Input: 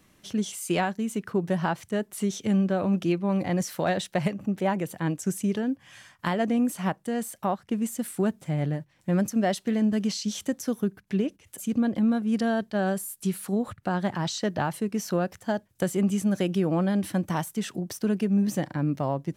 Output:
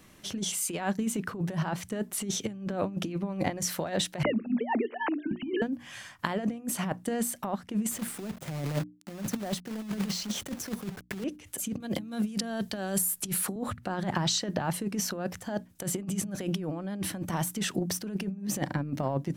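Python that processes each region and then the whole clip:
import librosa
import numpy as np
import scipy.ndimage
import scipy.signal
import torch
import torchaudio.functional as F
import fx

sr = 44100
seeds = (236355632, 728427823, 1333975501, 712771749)

y = fx.chain(x, sr, fx.sine_speech(),
    fx.hum_notches(base_hz=60, count=7), at=(4.23, 5.62))
y = fx.chain(y, sr, fx.high_shelf(hz=2100.0, db=-8.5),
    fx.quant_companded(bits=4),
    fx.band_squash(depth_pct=70), at=(7.91, 11.24))
y = fx.chain(y, sr, fx.high_shelf(hz=6800.0, db=6.5),
    fx.band_squash(depth_pct=70), at=(11.8, 13.56))
y = fx.over_compress(y, sr, threshold_db=-29.0, ratio=-0.5)
y = fx.hum_notches(y, sr, base_hz=60, count=5)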